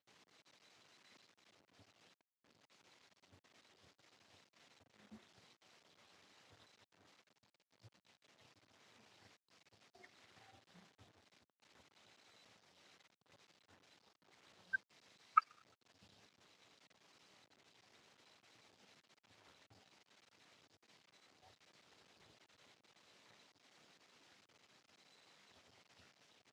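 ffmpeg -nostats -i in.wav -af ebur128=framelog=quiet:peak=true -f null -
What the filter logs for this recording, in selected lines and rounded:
Integrated loudness:
  I:         -40.6 LUFS
  Threshold: -63.5 LUFS
Loudness range:
  LRA:        23.8 LU
  Threshold: -73.4 LUFS
  LRA low:   -68.4 LUFS
  LRA high:  -44.6 LUFS
True peak:
  Peak:      -14.6 dBFS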